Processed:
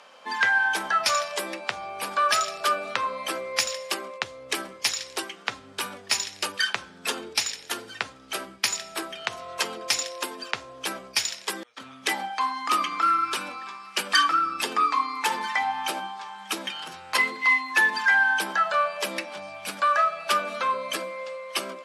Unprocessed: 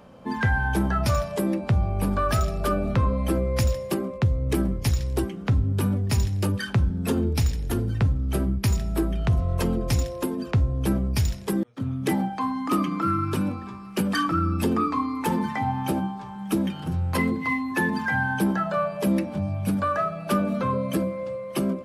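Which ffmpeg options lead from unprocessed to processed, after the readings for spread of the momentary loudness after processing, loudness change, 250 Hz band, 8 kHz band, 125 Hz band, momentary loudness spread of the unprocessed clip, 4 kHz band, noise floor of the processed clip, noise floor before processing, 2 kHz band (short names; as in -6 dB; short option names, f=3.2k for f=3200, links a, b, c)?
13 LU, -0.5 dB, -17.5 dB, +7.0 dB, -30.5 dB, 4 LU, +10.5 dB, -48 dBFS, -37 dBFS, +7.5 dB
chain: -af "highpass=530,lowpass=7.2k,tiltshelf=f=970:g=-9,volume=3dB"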